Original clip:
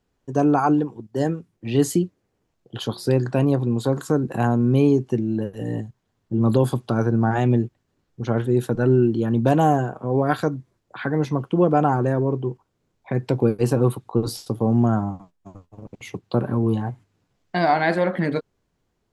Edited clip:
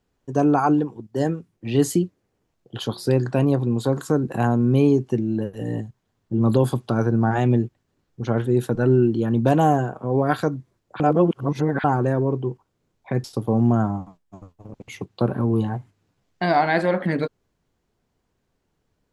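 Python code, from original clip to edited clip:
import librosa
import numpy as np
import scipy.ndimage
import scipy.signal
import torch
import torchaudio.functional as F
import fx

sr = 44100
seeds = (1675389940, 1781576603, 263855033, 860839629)

y = fx.edit(x, sr, fx.reverse_span(start_s=11.0, length_s=0.84),
    fx.cut(start_s=13.24, length_s=1.13), tone=tone)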